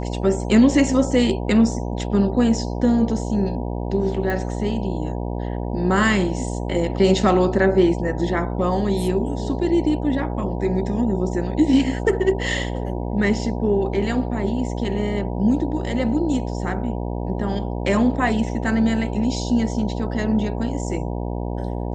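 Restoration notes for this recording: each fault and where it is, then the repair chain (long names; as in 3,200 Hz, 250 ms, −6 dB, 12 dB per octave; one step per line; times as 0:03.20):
mains buzz 60 Hz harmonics 16 −26 dBFS
0:04.30: click −14 dBFS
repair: click removal
hum removal 60 Hz, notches 16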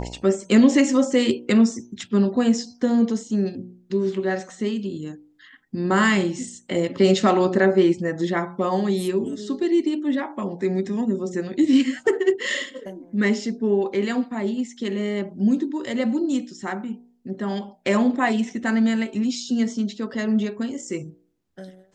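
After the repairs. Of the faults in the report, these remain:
none of them is left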